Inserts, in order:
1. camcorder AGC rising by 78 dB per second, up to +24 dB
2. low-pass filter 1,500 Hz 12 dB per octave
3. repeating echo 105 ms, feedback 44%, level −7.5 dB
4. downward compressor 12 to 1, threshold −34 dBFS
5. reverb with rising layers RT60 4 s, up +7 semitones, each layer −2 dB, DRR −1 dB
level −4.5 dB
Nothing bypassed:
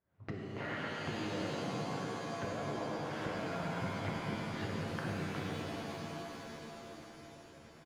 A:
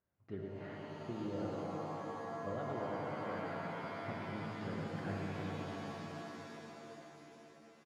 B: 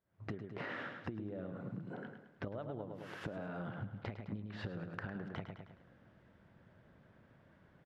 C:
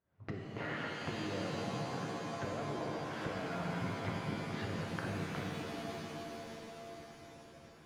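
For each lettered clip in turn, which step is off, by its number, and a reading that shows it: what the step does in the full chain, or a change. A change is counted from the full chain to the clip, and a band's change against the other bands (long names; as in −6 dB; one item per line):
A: 1, 8 kHz band −7.0 dB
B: 5, change in crest factor +6.0 dB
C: 3, change in crest factor +2.0 dB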